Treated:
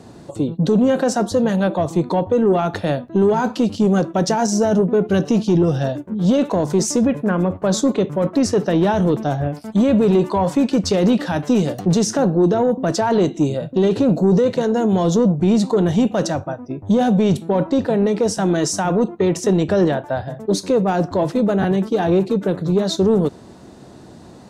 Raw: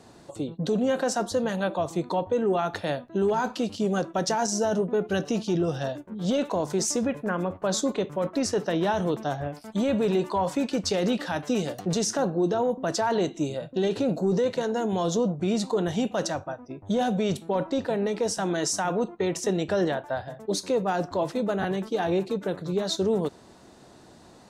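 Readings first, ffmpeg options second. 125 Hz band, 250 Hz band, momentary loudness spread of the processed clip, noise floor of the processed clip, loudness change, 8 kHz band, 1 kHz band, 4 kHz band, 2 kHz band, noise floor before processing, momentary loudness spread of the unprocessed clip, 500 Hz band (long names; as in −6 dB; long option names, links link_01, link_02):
+12.0 dB, +11.0 dB, 5 LU, −41 dBFS, +9.0 dB, +4.0 dB, +6.0 dB, +4.0 dB, +4.5 dB, −51 dBFS, 5 LU, +8.0 dB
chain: -af "equalizer=frequency=140:width=0.31:gain=8.5,asoftclip=type=tanh:threshold=-11dB,volume=4.5dB"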